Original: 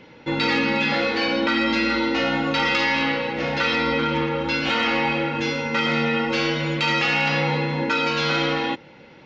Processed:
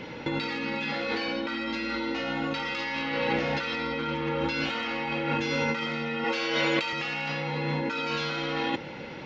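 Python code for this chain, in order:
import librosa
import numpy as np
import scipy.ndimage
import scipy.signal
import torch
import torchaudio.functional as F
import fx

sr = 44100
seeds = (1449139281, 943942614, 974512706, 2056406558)

y = fx.highpass(x, sr, hz=350.0, slope=12, at=(6.24, 6.93))
y = fx.over_compress(y, sr, threshold_db=-30.0, ratio=-1.0)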